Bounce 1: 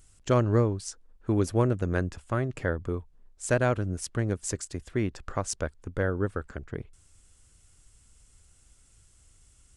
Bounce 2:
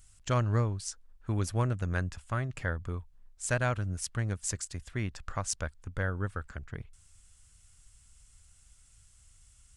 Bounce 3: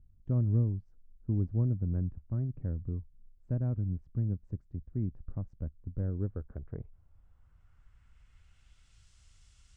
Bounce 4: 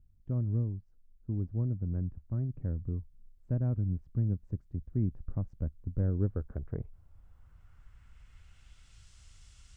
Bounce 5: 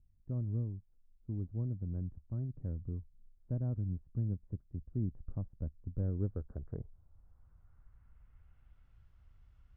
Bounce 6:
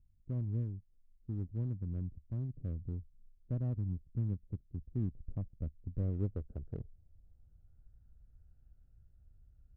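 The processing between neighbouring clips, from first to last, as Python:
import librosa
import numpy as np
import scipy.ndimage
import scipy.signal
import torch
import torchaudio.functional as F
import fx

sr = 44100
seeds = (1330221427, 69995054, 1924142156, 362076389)

y1 = fx.peak_eq(x, sr, hz=370.0, db=-12.0, octaves=1.7)
y2 = fx.filter_sweep_lowpass(y1, sr, from_hz=260.0, to_hz=4600.0, start_s=5.91, end_s=9.09, q=1.2)
y3 = fx.rider(y2, sr, range_db=5, speed_s=2.0)
y4 = scipy.signal.sosfilt(scipy.signal.butter(2, 1200.0, 'lowpass', fs=sr, output='sos'), y3)
y4 = y4 * librosa.db_to_amplitude(-5.0)
y5 = fx.wiener(y4, sr, points=41)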